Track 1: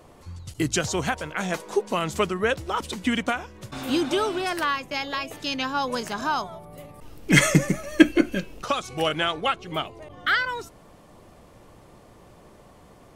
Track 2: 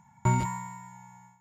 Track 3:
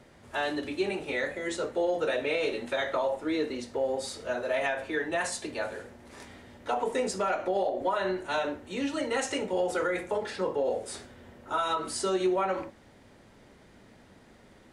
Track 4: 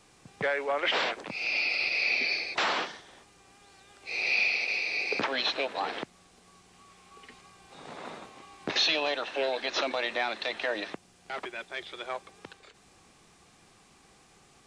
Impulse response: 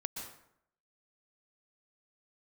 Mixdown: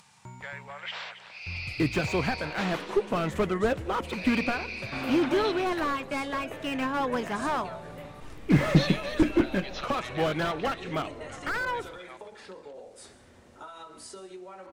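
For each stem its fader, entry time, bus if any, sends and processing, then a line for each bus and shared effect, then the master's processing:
-1.0 dB, 1.20 s, send -20 dB, no echo send, gate with hold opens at -38 dBFS; resonant high shelf 3500 Hz -9.5 dB, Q 1.5; slew limiter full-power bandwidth 55 Hz
-16.5 dB, 0.00 s, no send, echo send -5 dB, compressor 1.5:1, threshold -34 dBFS, peak gain reduction 5.5 dB
-9.5 dB, 2.10 s, send -9 dB, no echo send, compressor 10:1, threshold -34 dBFS, peak gain reduction 12 dB
-9.0 dB, 0.00 s, no send, echo send -13 dB, HPF 890 Hz 12 dB/oct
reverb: on, RT60 0.70 s, pre-delay 0.112 s
echo: echo 0.275 s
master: upward compressor, threshold -49 dBFS

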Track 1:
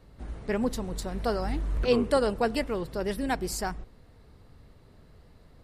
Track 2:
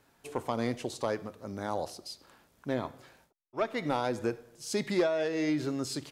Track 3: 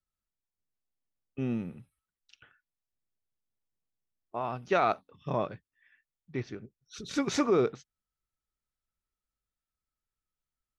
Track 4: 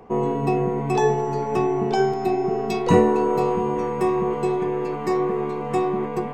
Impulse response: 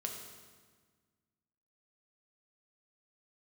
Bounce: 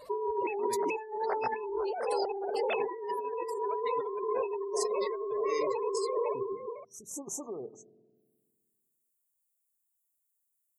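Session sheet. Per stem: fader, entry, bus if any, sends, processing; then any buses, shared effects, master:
-4.5 dB, 0.00 s, bus A, no send, no echo send, compressor 8:1, threshold -31 dBFS, peak gain reduction 13 dB
-10.5 dB, 0.10 s, bus A, send -23 dB, no echo send, reverb removal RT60 2 s; low shelf 81 Hz +11 dB; three-band expander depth 100%
-8.5 dB, 0.00 s, bus A, send -21 dB, no echo send, inverse Chebyshev band-stop 1500–4700 Hz, stop band 40 dB
-7.0 dB, 0.00 s, no bus, send -17.5 dB, echo send -8 dB, sine-wave speech; notches 60/120/180/240/300/360/420/480/540 Hz
bus A: 0.0 dB, tilt +4.5 dB/oct; compressor 5:1, threshold -43 dBFS, peak gain reduction 16 dB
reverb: on, RT60 1.5 s, pre-delay 4 ms
echo: echo 0.509 s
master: spectral gate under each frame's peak -30 dB strong; high shelf 3400 Hz +4.5 dB; negative-ratio compressor -33 dBFS, ratio -1

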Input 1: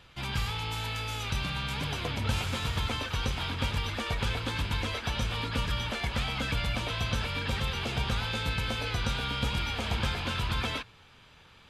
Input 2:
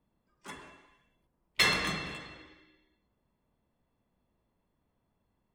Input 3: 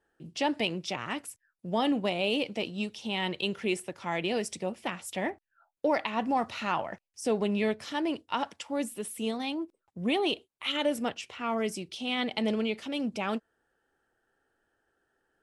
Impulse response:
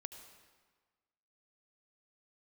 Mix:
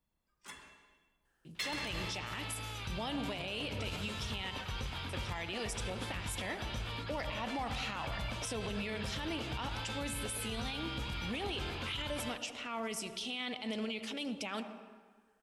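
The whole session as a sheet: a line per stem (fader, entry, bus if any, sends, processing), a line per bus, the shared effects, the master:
-8.0 dB, 1.55 s, no bus, no send, dry
-1.5 dB, 0.00 s, bus A, send -6 dB, dry
+1.5 dB, 1.25 s, muted 4.51–5.09, bus A, send -5.5 dB, dry
bus A: 0.0 dB, passive tone stack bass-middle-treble 10-0-10; limiter -28.5 dBFS, peak gain reduction 10.5 dB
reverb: on, RT60 1.5 s, pre-delay 69 ms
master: limiter -29 dBFS, peak gain reduction 9.5 dB

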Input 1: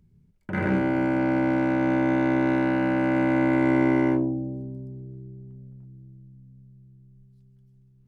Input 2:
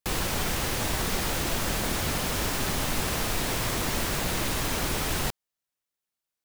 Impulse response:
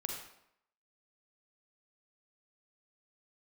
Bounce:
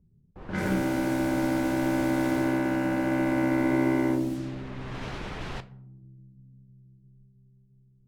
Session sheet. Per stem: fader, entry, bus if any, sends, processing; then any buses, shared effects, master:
+1.0 dB, 0.00 s, no send, dry
2.35 s -10 dB -> 2.61 s -17 dB -> 4.3 s -17 dB -> 5.01 s -4 dB, 0.30 s, send -12 dB, dry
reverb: on, RT60 0.75 s, pre-delay 38 ms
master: low-pass opened by the level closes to 610 Hz, open at -20 dBFS; flange 1.5 Hz, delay 3.9 ms, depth 7.9 ms, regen -75%

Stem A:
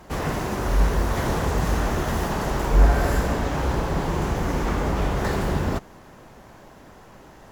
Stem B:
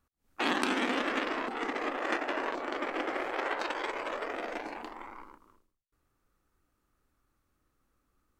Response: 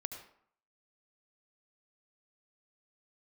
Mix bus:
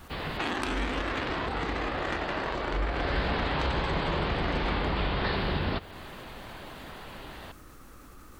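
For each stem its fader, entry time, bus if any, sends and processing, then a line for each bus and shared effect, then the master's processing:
2.89 s -10.5 dB -> 3.22 s -0.5 dB, 0.00 s, send -13 dB, steep low-pass 4700 Hz 72 dB/oct; bell 3400 Hz +11.5 dB 1.8 oct
+2.0 dB, 0.00 s, no send, fast leveller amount 50%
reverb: on, RT60 0.60 s, pre-delay 66 ms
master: compressor 2:1, threshold -31 dBFS, peak gain reduction 8.5 dB

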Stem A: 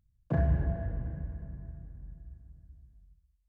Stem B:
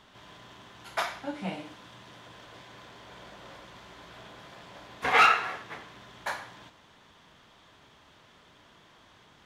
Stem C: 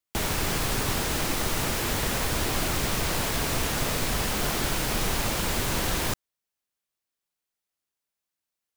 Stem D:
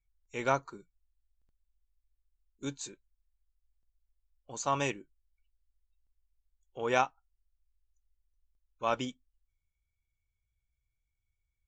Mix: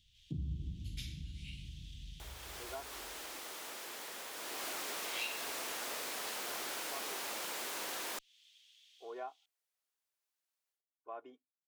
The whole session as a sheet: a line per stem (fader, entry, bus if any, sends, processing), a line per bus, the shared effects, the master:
-2.0 dB, 0.00 s, no send, inverse Chebyshev band-stop 550–2100 Hz, stop band 40 dB
-8.5 dB, 0.00 s, no send, steep high-pass 2700 Hz 36 dB/oct; AGC gain up to 8 dB
4.31 s -22 dB -> 4.67 s -11.5 dB, 2.05 s, no send, Bessel high-pass 460 Hz, order 4; AGC gain up to 10 dB; tube stage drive 12 dB, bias 0.35
-2.0 dB, 2.25 s, no send, ladder band-pass 640 Hz, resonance 30%; comb 2.8 ms, depth 90%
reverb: off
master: compressor 2:1, threshold -45 dBFS, peak gain reduction 12 dB

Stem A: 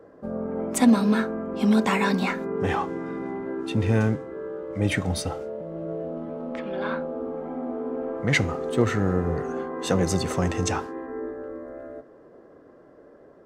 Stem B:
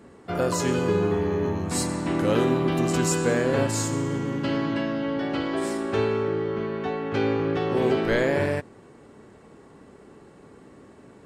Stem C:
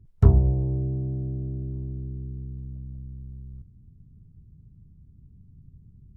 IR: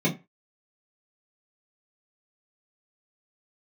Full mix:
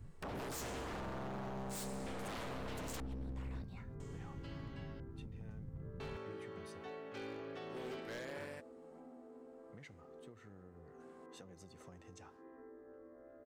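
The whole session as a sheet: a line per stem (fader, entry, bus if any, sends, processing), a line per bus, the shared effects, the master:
-19.0 dB, 1.50 s, no send, compressor 20:1, threshold -33 dBFS, peak gain reduction 21.5 dB
-17.0 dB, 0.00 s, no send, tilt +2 dB/oct; random-step tremolo 1 Hz, depth 100%
0.0 dB, 0.00 s, send -21.5 dB, compressor 10:1, threshold -29 dBFS, peak gain reduction 20 dB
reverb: on, RT60 0.25 s, pre-delay 3 ms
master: wavefolder -38.5 dBFS

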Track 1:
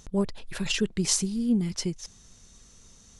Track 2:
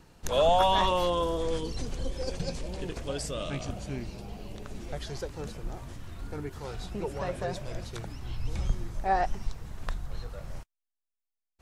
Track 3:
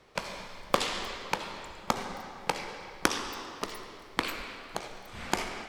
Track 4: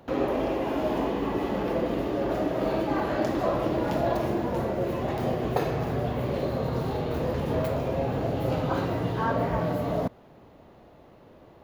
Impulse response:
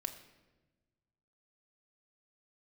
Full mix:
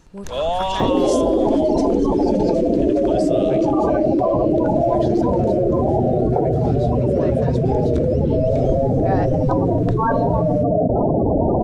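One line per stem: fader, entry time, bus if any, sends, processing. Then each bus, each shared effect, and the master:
-8.5 dB, 0.00 s, no send, dry
-0.5 dB, 0.00 s, send -11 dB, high shelf 10000 Hz -12 dB
-14.0 dB, 0.00 s, no send, band-pass 580 Hz, Q 0.63
+3.0 dB, 0.80 s, send -7 dB, spectral gate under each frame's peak -10 dB strong; fast leveller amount 100%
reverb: on, RT60 1.2 s, pre-delay 3 ms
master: dry

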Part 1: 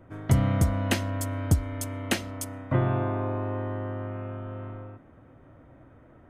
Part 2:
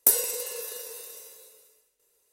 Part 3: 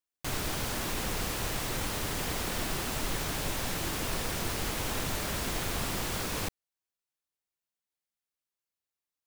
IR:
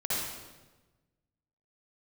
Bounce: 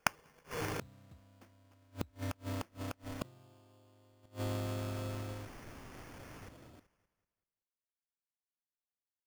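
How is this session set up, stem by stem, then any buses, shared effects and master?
-3.0 dB, 0.50 s, no send, no echo send, HPF 62 Hz 24 dB/oct
-3.0 dB, 0.00 s, no send, echo send -16 dB, dry
-20.0 dB, 0.00 s, no send, echo send -11 dB, dry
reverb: off
echo: feedback echo 0.19 s, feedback 41%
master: sample-rate reducer 3900 Hz, jitter 0%; flipped gate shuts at -26 dBFS, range -32 dB

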